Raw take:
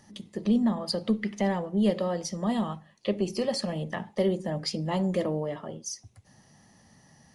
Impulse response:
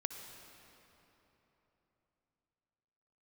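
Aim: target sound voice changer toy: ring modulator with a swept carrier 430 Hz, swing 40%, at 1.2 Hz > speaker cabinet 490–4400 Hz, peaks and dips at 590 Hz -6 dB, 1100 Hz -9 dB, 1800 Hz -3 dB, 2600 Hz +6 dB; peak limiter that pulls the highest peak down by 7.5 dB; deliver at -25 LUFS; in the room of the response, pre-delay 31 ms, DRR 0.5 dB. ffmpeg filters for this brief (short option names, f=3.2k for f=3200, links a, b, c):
-filter_complex "[0:a]alimiter=limit=-22dB:level=0:latency=1,asplit=2[a][b];[1:a]atrim=start_sample=2205,adelay=31[c];[b][c]afir=irnorm=-1:irlink=0,volume=-0.5dB[d];[a][d]amix=inputs=2:normalize=0,aeval=exprs='val(0)*sin(2*PI*430*n/s+430*0.4/1.2*sin(2*PI*1.2*n/s))':c=same,highpass=490,equalizer=f=590:t=q:w=4:g=-6,equalizer=f=1.1k:t=q:w=4:g=-9,equalizer=f=1.8k:t=q:w=4:g=-3,equalizer=f=2.6k:t=q:w=4:g=6,lowpass=f=4.4k:w=0.5412,lowpass=f=4.4k:w=1.3066,volume=13dB"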